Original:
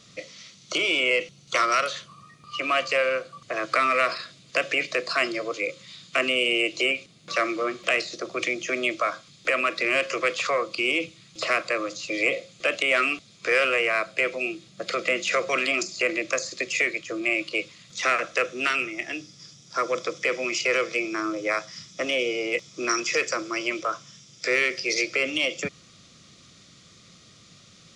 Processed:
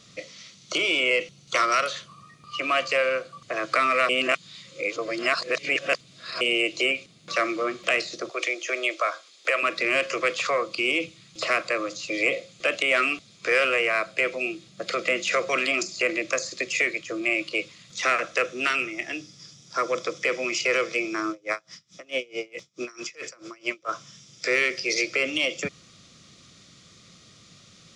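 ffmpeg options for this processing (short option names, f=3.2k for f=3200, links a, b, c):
-filter_complex "[0:a]asettb=1/sr,asplit=3[a][b][c];[a]atrim=end=8.304[d];[b]atrim=start=8.3:end=9.63,asetpts=PTS-STARTPTS,afade=t=in:d=0.004:c=qsin,afade=t=out:st=1.326:d=0.004:c=qsin,highpass=f=390:w=0.5412,highpass=f=390:w=1.3066[e];[c]atrim=start=9.626[f];[d][e]acrossfade=d=0.004:c1=hsin:c2=qsin[g];[g][f]acrossfade=d=0.004:c1=qsin:c2=hsin,asettb=1/sr,asplit=3[h][i][j];[h]atrim=end=21.304[k];[i]atrim=start=21.3:end=23.89,asetpts=PTS-STARTPTS,afade=t=in:d=0.004:c=qsin,afade=t=out:st=2.586:d=0.004:c=qsin,aeval=exprs='val(0)*pow(10,-29*(0.5-0.5*cos(2*PI*4.6*n/s))/20)':c=same[l];[j]atrim=start=23.886[m];[k][l]acrossfade=d=0.004:c1=hsin:c2=qsin[n];[n][m]acrossfade=d=0.004:c1=qsin:c2=hsin,asplit=3[o][p][q];[o]atrim=end=4.092[r];[p]atrim=start=4.088:end=6.412,asetpts=PTS-STARTPTS,areverse[s];[q]atrim=start=6.408[t];[r][s]acrossfade=d=0.004:c1=hsin:c2=hsin[u];[u][t]acrossfade=d=0.004:c1=hsin:c2=hsin"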